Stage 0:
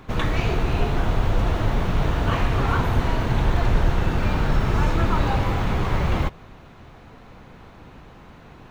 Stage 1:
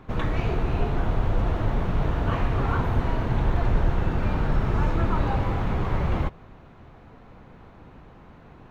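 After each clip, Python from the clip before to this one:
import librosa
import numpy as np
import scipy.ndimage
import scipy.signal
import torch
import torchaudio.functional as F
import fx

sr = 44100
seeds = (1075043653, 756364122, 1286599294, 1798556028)

y = fx.high_shelf(x, sr, hz=2800.0, db=-11.0)
y = y * 10.0 ** (-2.5 / 20.0)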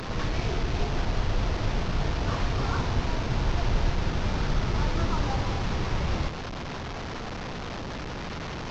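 y = fx.delta_mod(x, sr, bps=32000, step_db=-25.0)
y = y * 10.0 ** (-3.5 / 20.0)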